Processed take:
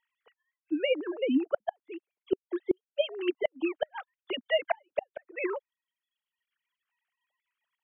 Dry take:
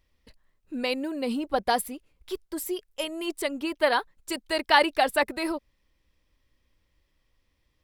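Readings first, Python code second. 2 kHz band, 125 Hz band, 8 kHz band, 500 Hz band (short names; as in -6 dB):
-9.5 dB, n/a, under -40 dB, -1.5 dB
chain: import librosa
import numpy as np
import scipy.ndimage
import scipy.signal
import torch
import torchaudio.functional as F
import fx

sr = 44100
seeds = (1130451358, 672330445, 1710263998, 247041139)

y = fx.sine_speech(x, sr)
y = fx.gate_flip(y, sr, shuts_db=-17.0, range_db=-35)
y = fx.dereverb_blind(y, sr, rt60_s=1.3)
y = y * 10.0 ** (3.0 / 20.0)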